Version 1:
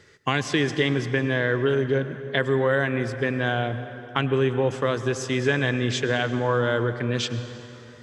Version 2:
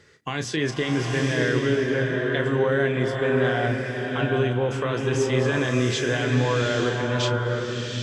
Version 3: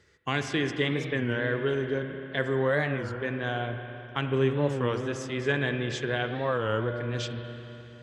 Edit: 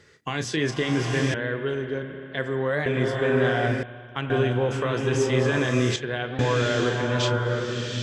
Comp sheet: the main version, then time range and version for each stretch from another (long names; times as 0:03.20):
2
0:01.34–0:02.86: punch in from 3
0:03.83–0:04.30: punch in from 3
0:05.96–0:06.39: punch in from 3
not used: 1